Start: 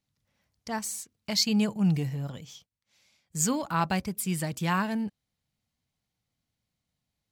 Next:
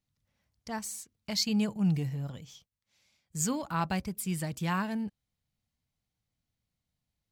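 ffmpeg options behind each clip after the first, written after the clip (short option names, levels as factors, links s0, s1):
-af "lowshelf=f=86:g=9,volume=0.596"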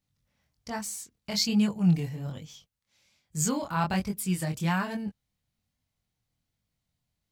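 -af "flanger=delay=19.5:depth=6.1:speed=1.2,volume=2"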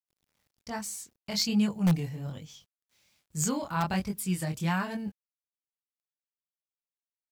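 -filter_complex "[0:a]asplit=2[s0][s1];[s1]aeval=exprs='(mod(5.96*val(0)+1,2)-1)/5.96':c=same,volume=0.422[s2];[s0][s2]amix=inputs=2:normalize=0,acrusher=bits=10:mix=0:aa=0.000001,volume=0.596"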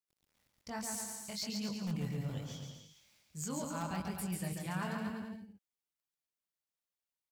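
-af "areverse,acompressor=threshold=0.0158:ratio=6,areverse,aecho=1:1:140|252|341.6|413.3|470.6:0.631|0.398|0.251|0.158|0.1,volume=0.841"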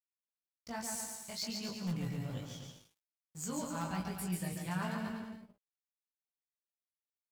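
-filter_complex "[0:a]aeval=exprs='sgn(val(0))*max(abs(val(0))-0.00158,0)':c=same,asplit=2[s0][s1];[s1]adelay=17,volume=0.562[s2];[s0][s2]amix=inputs=2:normalize=0"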